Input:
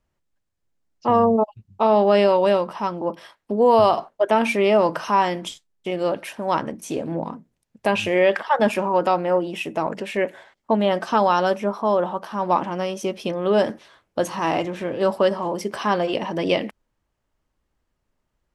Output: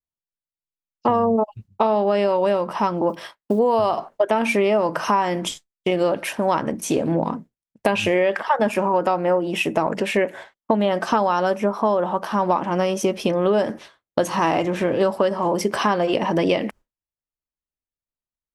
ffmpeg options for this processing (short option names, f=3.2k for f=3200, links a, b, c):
-filter_complex "[0:a]asettb=1/sr,asplit=3[a][b][c];[a]atrim=end=3.094[d];[b]atrim=start=3.09:end=3.59,asetpts=PTS-STARTPTS,afade=t=in:d=0.004:c=qsin,afade=t=out:st=0.496:d=0.004:c=qsin,acrusher=bits=9:mode=log:mix=0:aa=0.000001[e];[c]atrim=start=3.586[f];[d][e]acrossfade=d=0.004:c1=hsin:c2=qsin[g];[g][f]acrossfade=d=0.004:c1=qsin:c2=hsin,agate=range=-33dB:threshold=-39dB:ratio=3:detection=peak,adynamicequalizer=threshold=0.00631:dfrequency=3700:dqfactor=1.5:tfrequency=3700:tqfactor=1.5:attack=5:release=100:ratio=0.375:range=3:mode=cutabove:tftype=bell,acompressor=threshold=-24dB:ratio=6,volume=8dB"